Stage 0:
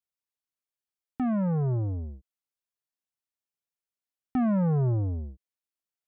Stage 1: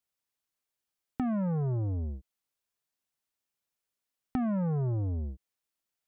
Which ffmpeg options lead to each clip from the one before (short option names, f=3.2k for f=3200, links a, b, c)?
-af "acompressor=threshold=-35dB:ratio=6,volume=5dB"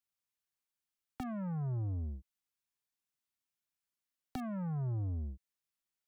-filter_complex "[0:a]acrossover=split=160|420|660[a][b][c][d];[b]asoftclip=type=tanh:threshold=-38.5dB[e];[c]acrusher=bits=6:mix=0:aa=0.000001[f];[d]aeval=exprs='(mod(39.8*val(0)+1,2)-1)/39.8':c=same[g];[a][e][f][g]amix=inputs=4:normalize=0,volume=-4.5dB"